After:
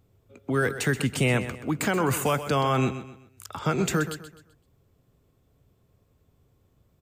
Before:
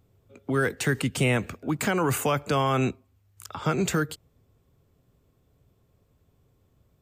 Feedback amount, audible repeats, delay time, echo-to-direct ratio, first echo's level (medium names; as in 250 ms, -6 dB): 36%, 3, 128 ms, -11.5 dB, -12.0 dB